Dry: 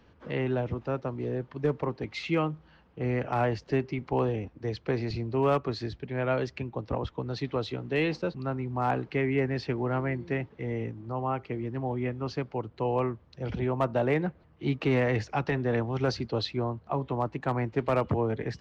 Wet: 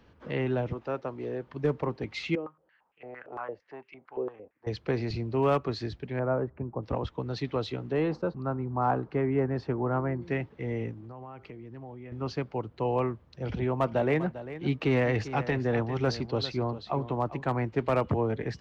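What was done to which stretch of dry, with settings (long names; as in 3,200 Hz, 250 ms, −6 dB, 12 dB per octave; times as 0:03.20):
0:00.73–0:01.47: bass and treble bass −9 dB, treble −2 dB
0:02.35–0:04.67: band-pass on a step sequencer 8.8 Hz 410–2,500 Hz
0:06.19–0:06.83: low-pass filter 1,300 Hz 24 dB per octave
0:07.92–0:10.22: high shelf with overshoot 1,700 Hz −9.5 dB, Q 1.5
0:10.93–0:12.12: downward compressor 8 to 1, threshold −40 dBFS
0:13.44–0:17.47: single-tap delay 398 ms −13.5 dB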